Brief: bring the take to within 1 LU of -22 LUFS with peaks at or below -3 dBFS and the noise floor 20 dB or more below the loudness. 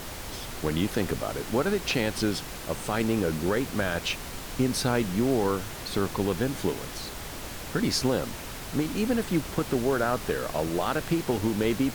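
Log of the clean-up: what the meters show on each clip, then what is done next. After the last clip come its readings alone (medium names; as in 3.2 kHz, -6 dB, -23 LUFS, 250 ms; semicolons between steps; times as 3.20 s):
noise floor -39 dBFS; noise floor target -49 dBFS; loudness -28.5 LUFS; peak level -13.5 dBFS; loudness target -22.0 LUFS
-> noise print and reduce 10 dB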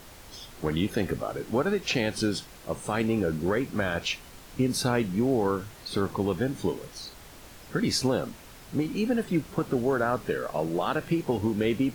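noise floor -48 dBFS; noise floor target -49 dBFS
-> noise print and reduce 6 dB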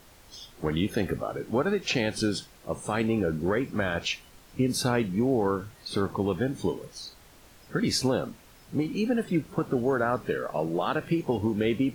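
noise floor -54 dBFS; loudness -28.5 LUFS; peak level -14.5 dBFS; loudness target -22.0 LUFS
-> trim +6.5 dB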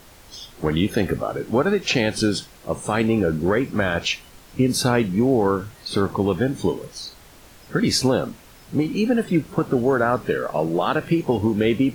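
loudness -22.0 LUFS; peak level -8.0 dBFS; noise floor -47 dBFS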